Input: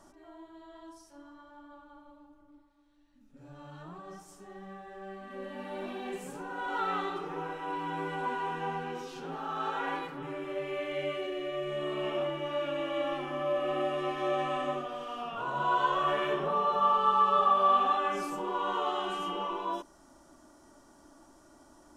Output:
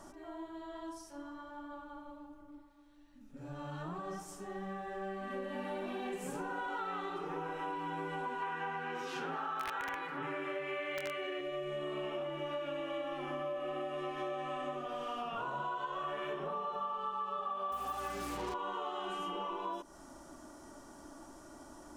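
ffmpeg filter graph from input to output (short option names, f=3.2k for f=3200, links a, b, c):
-filter_complex "[0:a]asettb=1/sr,asplit=3[a][b][c];[a]atrim=end=8.424[d];[b]atrim=start=8.42:end=11.41,asetpts=PTS-STARTPTS,afade=t=in:d=0.004:c=qsin,afade=t=out:st=2.986:d=0.004:c=qsin,highpass=110,aeval=exprs='(mod(16.8*val(0)+1,2)-1)/16.8':c=same,equalizer=f=1.7k:w=0.77:g=10[e];[c]atrim=start=11.406[f];[d][e]acrossfade=d=0.004:c1=hsin:c2=qsin[g];[g][f]acrossfade=d=0.004:c1=qsin:c2=hsin,asettb=1/sr,asplit=3[h][i][j];[h]atrim=end=17.724[k];[i]atrim=start=17.72:end=18.54,asetpts=PTS-STARTPTS,afade=t=in:d=0.004:c=qsin,afade=t=out:st=0.816:d=0.004:c=qsin,highpass=f=95:w=0.5412,highpass=f=95:w=1.3066,aeval=exprs='val(0)+0.00562*(sin(2*PI*60*n/s)+sin(2*PI*2*60*n/s)/2+sin(2*PI*3*60*n/s)/3+sin(2*PI*4*60*n/s)/4+sin(2*PI*5*60*n/s)/5)':c=same,acrusher=bits=5:mix=0:aa=0.5[l];[j]atrim=start=18.536[m];[k][l]acrossfade=d=0.004:c1=hsin:c2=qsin[n];[n][m]acrossfade=d=0.004:c1=qsin:c2=hsin,equalizer=f=4.1k:t=o:w=0.77:g=-2,acompressor=threshold=-41dB:ratio=10,volume=5dB"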